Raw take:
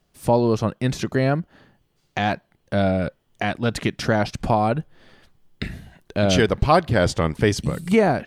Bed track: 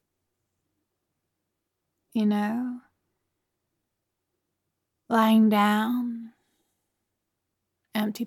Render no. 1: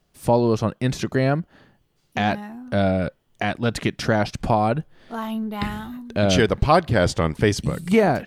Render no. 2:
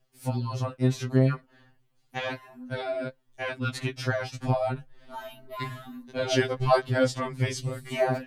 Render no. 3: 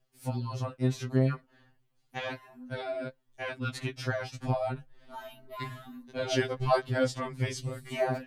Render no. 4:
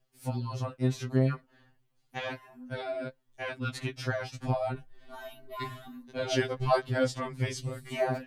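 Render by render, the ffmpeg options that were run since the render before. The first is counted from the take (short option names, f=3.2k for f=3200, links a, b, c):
-filter_complex "[1:a]volume=-8.5dB[a];[0:a][a]amix=inputs=2:normalize=0"
-af "flanger=delay=1:depth=9.8:regen=59:speed=0.59:shape=triangular,afftfilt=real='re*2.45*eq(mod(b,6),0)':imag='im*2.45*eq(mod(b,6),0)':win_size=2048:overlap=0.75"
-af "volume=-4dB"
-filter_complex "[0:a]asettb=1/sr,asplit=3[a][b][c];[a]atrim=end=2.294[d];[b]atrim=start=2.29:end=2.75,asetpts=PTS-STARTPTS,afade=t=in:d=0.004:c=qsin,afade=t=out:st=0.456:d=0.004:c=qsin,bandreject=f=4k:w=12[e];[c]atrim=start=2.746[f];[d][e]acrossfade=d=0.004:c1=hsin:c2=qsin[g];[g][f]acrossfade=d=0.004:c1=qsin:c2=hsin,asettb=1/sr,asplit=3[h][i][j];[h]atrim=end=4.744[k];[i]atrim=start=4.74:end=5.88,asetpts=PTS-STARTPTS,afade=t=in:d=0.004:c=qsin,afade=t=out:st=1.136:d=0.004:c=qsin,aecho=1:1:2.7:0.65,atrim=end_sample=50274[l];[j]atrim=start=5.876[m];[k][l]acrossfade=d=0.004:c1=hsin:c2=qsin[n];[n][m]acrossfade=d=0.004:c1=qsin:c2=hsin"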